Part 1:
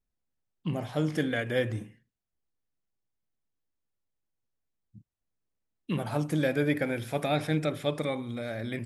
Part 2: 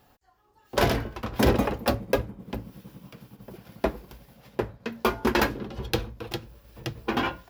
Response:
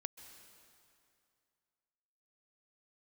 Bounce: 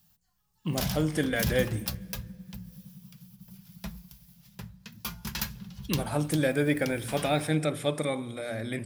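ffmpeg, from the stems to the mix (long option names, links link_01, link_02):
-filter_complex "[0:a]equalizer=frequency=8800:width_type=o:width=0.27:gain=12,volume=-1dB,asplit=2[link_01][link_02];[link_02]volume=-8dB[link_03];[1:a]firequalizer=gain_entry='entry(120,0);entry(180,12);entry(260,-26);entry(940,-11);entry(3400,1);entry(5900,7)':delay=0.05:min_phase=1,volume=-7.5dB,asplit=2[link_04][link_05];[link_05]volume=-14dB[link_06];[2:a]atrim=start_sample=2205[link_07];[link_03][link_06]amix=inputs=2:normalize=0[link_08];[link_08][link_07]afir=irnorm=-1:irlink=0[link_09];[link_01][link_04][link_09]amix=inputs=3:normalize=0,highshelf=frequency=9100:gain=4,bandreject=frequency=59.48:width_type=h:width=4,bandreject=frequency=118.96:width_type=h:width=4,bandreject=frequency=178.44:width_type=h:width=4,bandreject=frequency=237.92:width_type=h:width=4"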